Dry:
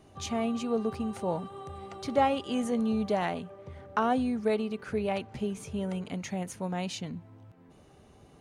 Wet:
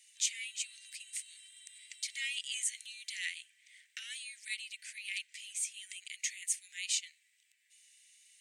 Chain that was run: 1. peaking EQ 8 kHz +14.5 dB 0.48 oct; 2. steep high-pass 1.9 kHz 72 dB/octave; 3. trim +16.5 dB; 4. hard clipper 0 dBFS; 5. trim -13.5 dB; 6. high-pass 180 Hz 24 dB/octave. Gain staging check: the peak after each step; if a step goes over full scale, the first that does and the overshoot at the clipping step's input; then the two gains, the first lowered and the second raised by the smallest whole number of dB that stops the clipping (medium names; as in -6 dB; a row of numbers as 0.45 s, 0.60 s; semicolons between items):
-13.5 dBFS, -20.5 dBFS, -4.0 dBFS, -4.0 dBFS, -17.5 dBFS, -18.0 dBFS; nothing clips